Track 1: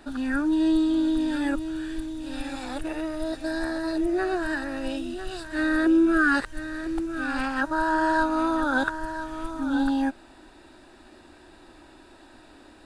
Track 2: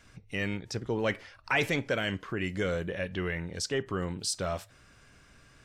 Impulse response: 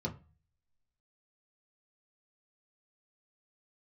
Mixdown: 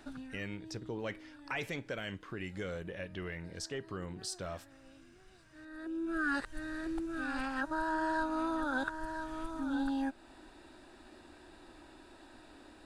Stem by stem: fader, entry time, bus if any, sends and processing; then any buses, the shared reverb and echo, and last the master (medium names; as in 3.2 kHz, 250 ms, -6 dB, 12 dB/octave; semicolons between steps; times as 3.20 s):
-5.0 dB, 0.00 s, no send, auto duck -23 dB, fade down 0.40 s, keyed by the second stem
-7.0 dB, 0.00 s, no send, none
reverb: none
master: compression 1.5:1, threshold -40 dBFS, peak gain reduction 6.5 dB